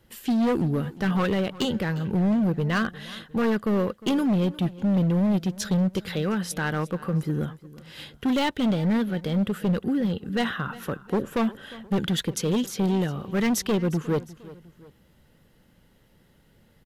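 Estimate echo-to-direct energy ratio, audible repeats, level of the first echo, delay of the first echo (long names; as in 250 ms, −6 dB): −18.0 dB, 2, −19.0 dB, 356 ms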